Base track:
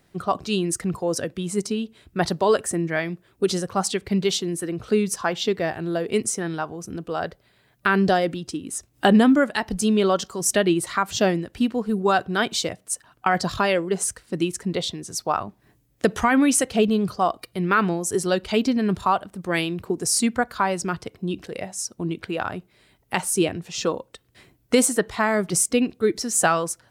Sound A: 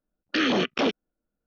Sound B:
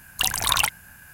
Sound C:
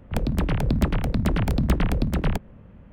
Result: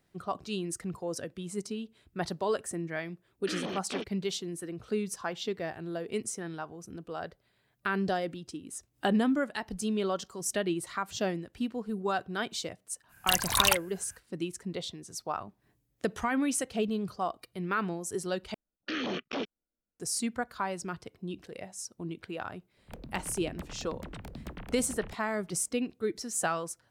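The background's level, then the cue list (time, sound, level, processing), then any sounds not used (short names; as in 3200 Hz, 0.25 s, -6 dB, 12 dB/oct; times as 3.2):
base track -11 dB
3.13 add A -13.5 dB
13.08 add B -2.5 dB, fades 0.05 s + upward expander, over -36 dBFS
18.54 replace with A -10.5 dB
22.77 add C -16.5 dB + low shelf 230 Hz -7.5 dB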